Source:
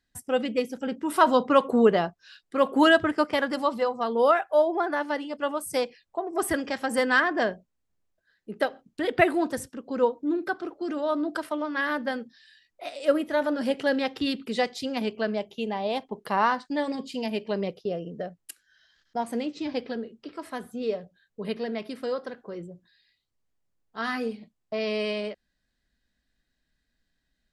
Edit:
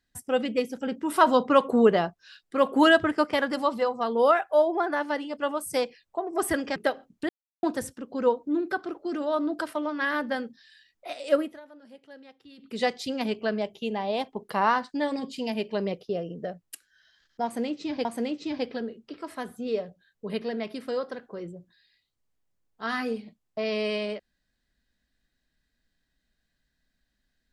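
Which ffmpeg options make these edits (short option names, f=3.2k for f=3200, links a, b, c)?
-filter_complex "[0:a]asplit=7[a][b][c][d][e][f][g];[a]atrim=end=6.762[h];[b]atrim=start=8.518:end=9.05,asetpts=PTS-STARTPTS,afade=t=out:st=0.528:d=0.004:c=hsin[i];[c]atrim=start=9.05:end=9.39,asetpts=PTS-STARTPTS,volume=0[j];[d]atrim=start=9.39:end=13.36,asetpts=PTS-STARTPTS,afade=t=in:d=0.004:c=hsin,afade=t=out:st=3.7:d=0.27:silence=0.0668344[k];[e]atrim=start=13.36:end=14.33,asetpts=PTS-STARTPTS,volume=-23.5dB[l];[f]atrim=start=14.33:end=19.812,asetpts=PTS-STARTPTS,afade=t=in:d=0.27:silence=0.0668344[m];[g]atrim=start=19.198[n];[i][j][k][l][m]concat=n=5:v=0:a=1[o];[h][o]acrossfade=d=0.004:c1=hsin:c2=hsin[p];[p][n]acrossfade=d=0.004:c1=hsin:c2=hsin"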